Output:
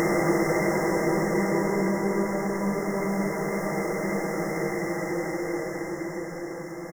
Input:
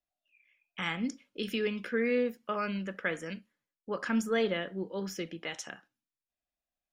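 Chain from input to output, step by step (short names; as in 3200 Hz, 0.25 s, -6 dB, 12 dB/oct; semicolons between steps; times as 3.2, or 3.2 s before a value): random spectral dropouts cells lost 33%; sample leveller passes 5; brick-wall FIR band-stop 2100–5100 Hz; step gate "x.x...xx." 130 bpm -24 dB; tapped delay 0.306/0.669 s -4/-9.5 dB; Paulstretch 13×, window 0.50 s, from 5.49; gain +5.5 dB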